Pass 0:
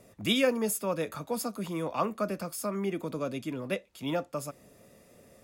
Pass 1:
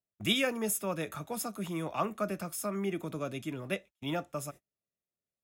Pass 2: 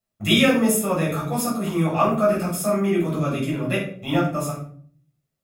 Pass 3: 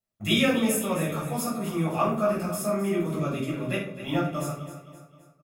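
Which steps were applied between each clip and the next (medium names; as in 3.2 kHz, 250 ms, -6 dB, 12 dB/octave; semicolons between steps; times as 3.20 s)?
band-stop 4.6 kHz, Q 5.5; gate -44 dBFS, range -40 dB; graphic EQ with 31 bands 250 Hz -7 dB, 500 Hz -8 dB, 1 kHz -5 dB
simulated room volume 540 m³, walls furnished, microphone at 6.6 m; trim +2 dB
feedback delay 261 ms, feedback 45%, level -12.5 dB; trim -5.5 dB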